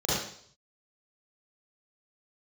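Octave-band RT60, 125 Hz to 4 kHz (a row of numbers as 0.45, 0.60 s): 0.80, 0.55, 0.60, 0.55, 0.55, 0.65 s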